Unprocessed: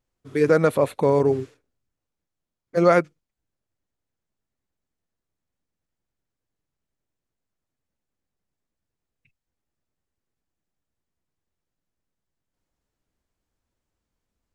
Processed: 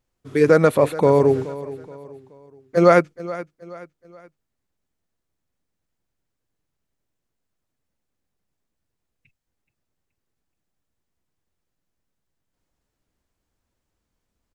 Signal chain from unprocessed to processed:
repeating echo 425 ms, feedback 39%, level −16.5 dB
level +3.5 dB

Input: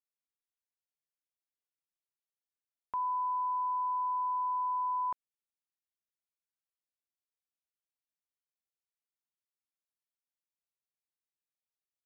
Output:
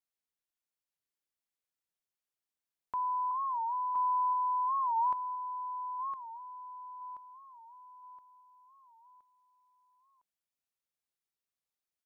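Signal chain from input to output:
0:03.31–0:03.95: high-pass filter 740 Hz 12 dB per octave
repeating echo 1,020 ms, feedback 41%, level −7.5 dB
wow of a warped record 45 rpm, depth 160 cents

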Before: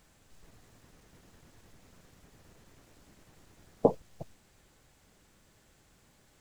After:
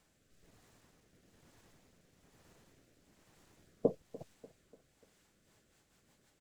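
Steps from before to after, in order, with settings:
low-shelf EQ 95 Hz −8.5 dB
rotating-speaker cabinet horn 1.1 Hz, later 6.3 Hz, at 0:05.04
repeating echo 294 ms, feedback 47%, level −19 dB
level −3.5 dB

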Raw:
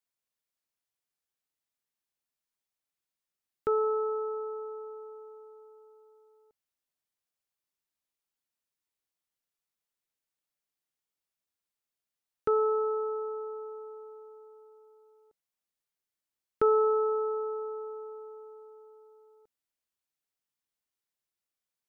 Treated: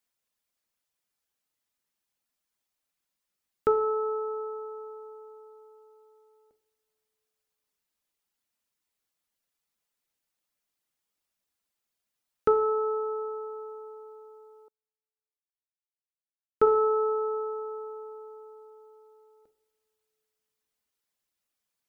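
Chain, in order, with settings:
reverb reduction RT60 0.54 s
coupled-rooms reverb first 0.73 s, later 2.6 s, from −18 dB, DRR 8.5 dB
0:14.68–0:16.67: expander for the loud parts 2.5 to 1, over −51 dBFS
level +6 dB

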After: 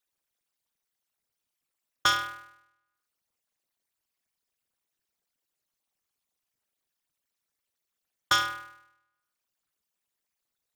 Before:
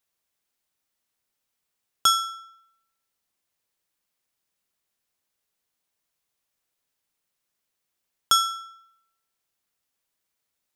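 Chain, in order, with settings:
spectral envelope exaggerated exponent 3
ring modulator with a square carrier 110 Hz
level −4 dB

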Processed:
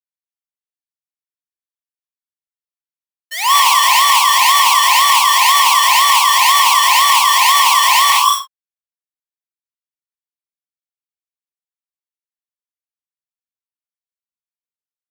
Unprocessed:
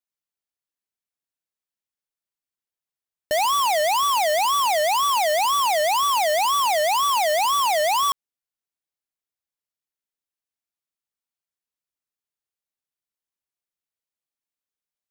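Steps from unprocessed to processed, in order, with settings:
reverb whose tail is shaped and stops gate 300 ms rising, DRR −1 dB
downward expander −12 dBFS
elliptic high-pass filter 1,000 Hz, stop band 50 dB
ambience of single reflections 45 ms −9 dB, 60 ms −17 dB
boost into a limiter +19.5 dB
level −1 dB

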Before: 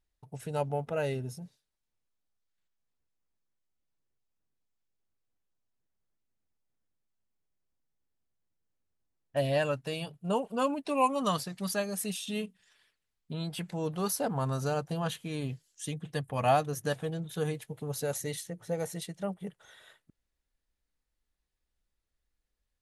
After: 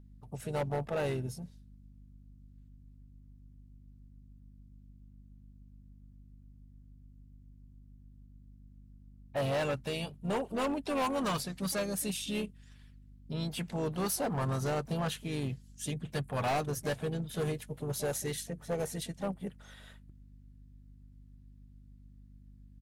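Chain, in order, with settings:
mains hum 50 Hz, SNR 19 dB
pitch-shifted copies added −3 semitones −12 dB, +5 semitones −15 dB
gain into a clipping stage and back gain 28 dB

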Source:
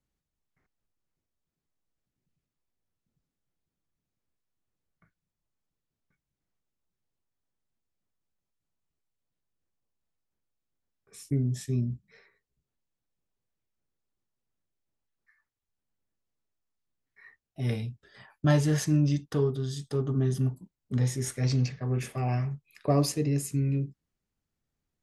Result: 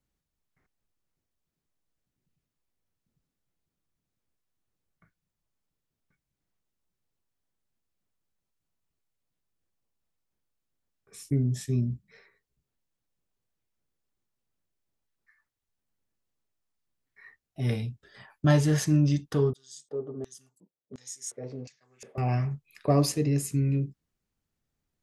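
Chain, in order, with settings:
0:19.53–0:22.18: auto-filter band-pass square 1.4 Hz 500–7,000 Hz
level +1.5 dB

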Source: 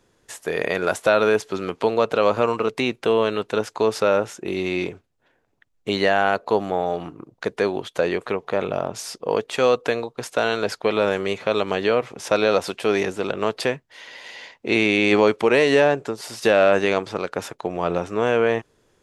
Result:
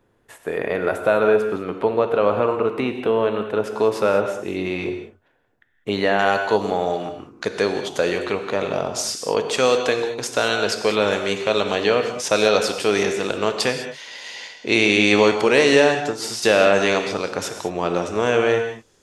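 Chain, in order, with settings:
parametric band 6,100 Hz −15 dB 1.7 octaves, from 0:03.64 −5.5 dB, from 0:06.19 +8.5 dB
reverb whose tail is shaped and stops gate 230 ms flat, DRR 5.5 dB

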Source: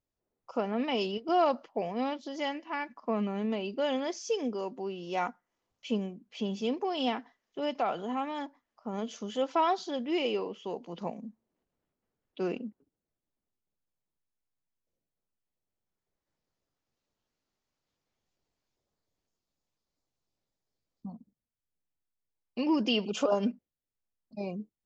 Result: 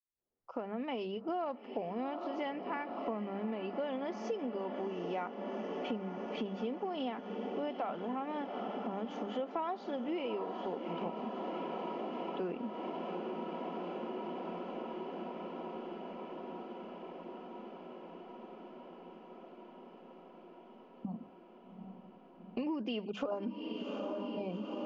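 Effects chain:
fade in at the beginning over 1.60 s
low-pass filter 2,300 Hz 12 dB per octave
feedback delay with all-pass diffusion 799 ms, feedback 78%, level −12 dB
downward compressor 5 to 1, threshold −44 dBFS, peak gain reduction 19.5 dB
mains-hum notches 50/100/150/200 Hz
level +8 dB

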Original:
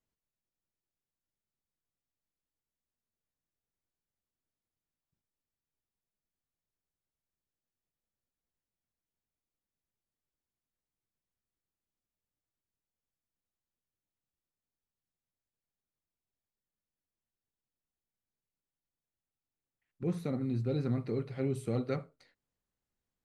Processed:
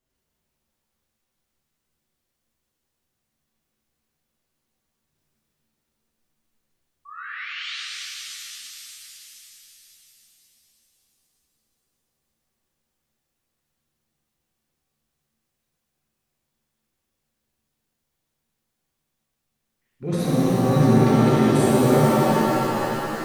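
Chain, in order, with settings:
sound drawn into the spectrogram rise, 0:07.05–0:07.76, 1,100–4,100 Hz −47 dBFS
transient designer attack −4 dB, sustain +11 dB
reverb with rising layers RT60 3.6 s, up +7 semitones, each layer −2 dB, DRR −7 dB
level +5.5 dB

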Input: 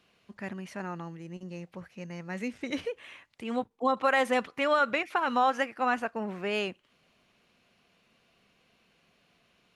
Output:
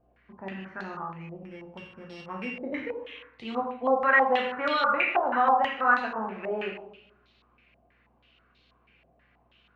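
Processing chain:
0:01.36–0:02.55: samples sorted by size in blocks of 16 samples
transient designer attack +1 dB, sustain −3 dB
mains hum 60 Hz, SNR 34 dB
dense smooth reverb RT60 0.84 s, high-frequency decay 0.8×, DRR −1 dB
low-pass on a step sequencer 6.2 Hz 680–4,000 Hz
level −5 dB

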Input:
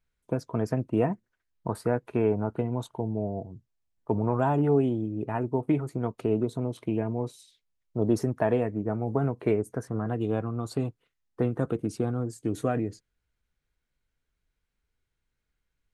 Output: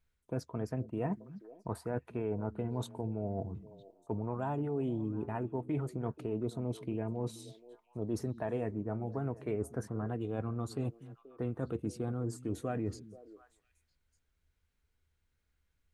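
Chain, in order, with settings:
parametric band 77 Hz +13.5 dB 0.26 octaves
reversed playback
downward compressor 6 to 1, threshold −32 dBFS, peak gain reduction 13.5 dB
reversed playback
echo through a band-pass that steps 240 ms, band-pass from 170 Hz, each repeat 1.4 octaves, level −11.5 dB

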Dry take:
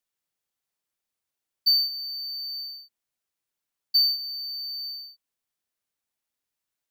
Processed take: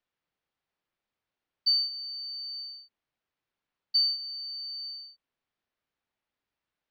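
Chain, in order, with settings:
high-frequency loss of the air 250 metres
level +5.5 dB

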